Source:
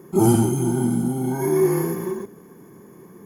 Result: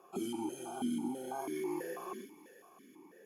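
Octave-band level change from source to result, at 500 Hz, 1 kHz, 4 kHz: -19.5 dB, -13.0 dB, n/a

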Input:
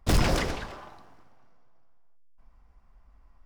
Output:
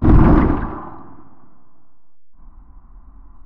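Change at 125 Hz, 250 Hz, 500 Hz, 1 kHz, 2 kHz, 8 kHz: +14.0 dB, +17.5 dB, +9.5 dB, +11.0 dB, +2.5 dB, under -25 dB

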